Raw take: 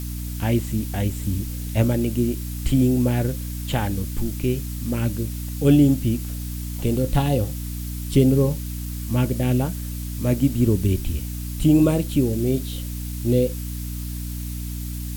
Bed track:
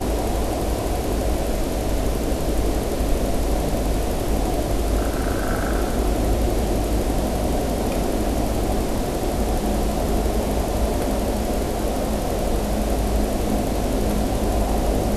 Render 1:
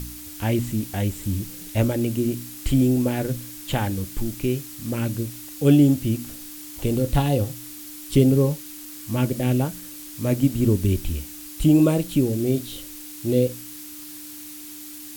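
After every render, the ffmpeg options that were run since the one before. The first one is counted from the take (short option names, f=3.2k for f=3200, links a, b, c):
-af "bandreject=f=60:t=h:w=4,bandreject=f=120:t=h:w=4,bandreject=f=180:t=h:w=4,bandreject=f=240:t=h:w=4"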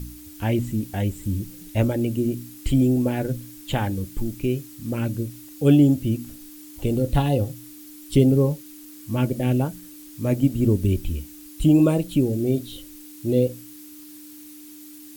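-af "afftdn=nr=8:nf=-39"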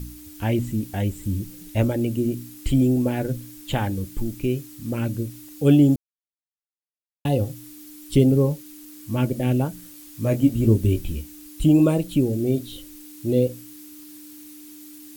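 -filter_complex "[0:a]asettb=1/sr,asplit=3[a][b][c];[a]atrim=end=9.774[d];[b]atrim=start=9.77:end=11.21,asetpts=PTS-STARTPTS,afade=t=in:d=0.004:c=qsin,afade=t=out:st=1.436:d=0.004:c=qsin,asplit=2[e][f];[f]adelay=18,volume=-5.5dB[g];[e][g]amix=inputs=2:normalize=0,atrim=end_sample=63504[h];[c]atrim=start=11.206[i];[d][h]acrossfade=d=0.004:c1=hsin:c2=qsin[j];[j][i]acrossfade=d=0.004:c1=qsin:c2=hsin,asplit=3[k][l][m];[k]atrim=end=5.96,asetpts=PTS-STARTPTS,afade=t=out:st=5.956:d=0.004:c=hsin[n];[l]atrim=start=5.96:end=7.25,asetpts=PTS-STARTPTS,volume=0[o];[m]atrim=start=7.25,asetpts=PTS-STARTPTS,afade=t=in:d=0.004:c=hsin[p];[n][o][p]concat=n=3:v=0:a=1"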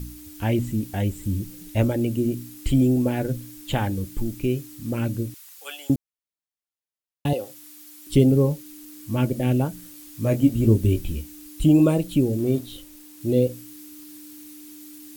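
-filter_complex "[0:a]asettb=1/sr,asplit=3[a][b][c];[a]atrim=end=5.344[d];[b]atrim=start=5.34:end=5.9,asetpts=PTS-STARTPTS,afade=t=in:d=0.004:c=qsin,afade=t=out:st=0.556:d=0.004:c=qsin,highpass=f=930:w=0.5412,highpass=f=930:w=1.3066[e];[c]atrim=start=5.896[f];[d][e]acrossfade=d=0.004:c1=hsin:c2=qsin[g];[g][f]acrossfade=d=0.004:c1=qsin:c2=hsin,asettb=1/sr,asplit=3[h][i][j];[h]atrim=end=7.334[k];[i]atrim=start=7.33:end=8.07,asetpts=PTS-STARTPTS,afade=t=in:d=0.004:c=qsin,afade=t=out:st=0.736:d=0.004:c=qsin,highpass=510[l];[j]atrim=start=8.066[m];[k][l]acrossfade=d=0.004:c1=hsin:c2=qsin[n];[n][m]acrossfade=d=0.004:c1=qsin:c2=hsin,asettb=1/sr,asplit=3[o][p][q];[o]atrim=end=12.384[r];[p]atrim=start=12.38:end=13.21,asetpts=PTS-STARTPTS,afade=t=in:d=0.004:c=qsin,afade=t=out:st=0.826:d=0.004:c=qsin,aeval=exprs='sgn(val(0))*max(abs(val(0))-0.00299,0)':c=same[s];[q]atrim=start=13.206[t];[r][s]acrossfade=d=0.004:c1=hsin:c2=qsin[u];[u][t]acrossfade=d=0.004:c1=qsin:c2=hsin"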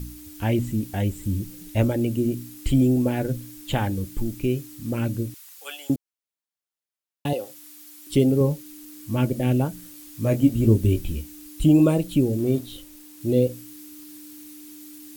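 -filter_complex "[0:a]asettb=1/sr,asplit=3[a][b][c];[a]atrim=end=5.774[d];[b]atrim=start=5.77:end=8.41,asetpts=PTS-STARTPTS,afade=t=in:d=0.004:c=qsin,afade=t=out:st=2.636:d=0.004:c=qsin,lowshelf=f=120:g=-10[e];[c]atrim=start=8.406[f];[d][e]acrossfade=d=0.004:c1=hsin:c2=qsin[g];[g][f]acrossfade=d=0.004:c1=qsin:c2=hsin"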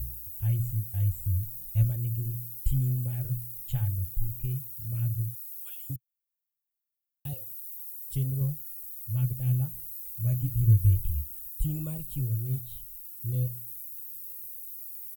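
-af "firequalizer=gain_entry='entry(120,0);entry(200,-26);entry(300,-28);entry(820,-24);entry(15000,8)':delay=0.05:min_phase=1"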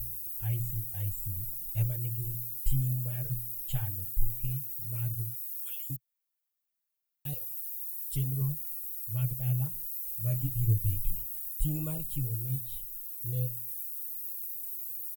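-af "equalizer=f=91:w=0.38:g=-8,aecho=1:1:6.5:0.91"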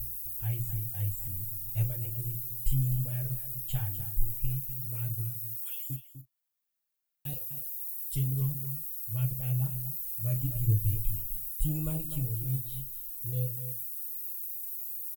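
-filter_complex "[0:a]asplit=2[a][b];[b]adelay=38,volume=-11dB[c];[a][c]amix=inputs=2:normalize=0,asplit=2[d][e];[e]adelay=250.7,volume=-10dB,highshelf=f=4k:g=-5.64[f];[d][f]amix=inputs=2:normalize=0"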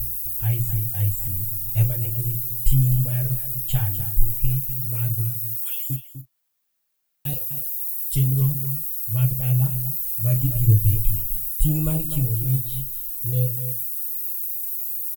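-af "volume=10dB"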